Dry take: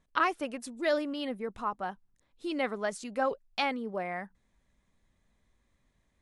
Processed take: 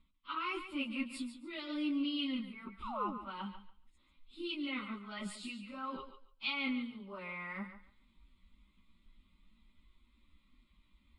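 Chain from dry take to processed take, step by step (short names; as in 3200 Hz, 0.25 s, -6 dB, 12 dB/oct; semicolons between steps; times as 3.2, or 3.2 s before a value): LPF 5400 Hz 12 dB/oct; reverse; compressor 8:1, threshold -37 dBFS, peak gain reduction 15.5 dB; reverse; fixed phaser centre 300 Hz, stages 4; plain phase-vocoder stretch 1.8×; fixed phaser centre 1700 Hz, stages 6; painted sound fall, 2.82–3.18, 200–1300 Hz -55 dBFS; on a send: thinning echo 0.142 s, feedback 21%, high-pass 400 Hz, level -9.5 dB; on the sum: gain +12 dB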